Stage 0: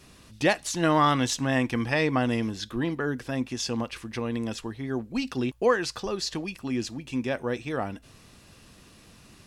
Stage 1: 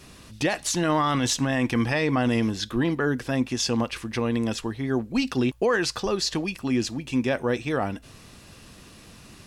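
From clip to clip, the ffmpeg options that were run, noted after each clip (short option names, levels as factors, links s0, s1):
-af "alimiter=limit=0.106:level=0:latency=1:release=12,volume=1.78"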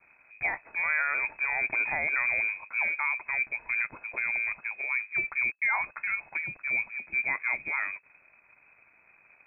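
-af "aeval=exprs='sgn(val(0))*max(abs(val(0))-0.00299,0)':c=same,lowpass=f=2200:t=q:w=0.5098,lowpass=f=2200:t=q:w=0.6013,lowpass=f=2200:t=q:w=0.9,lowpass=f=2200:t=q:w=2.563,afreqshift=-2600,volume=0.562"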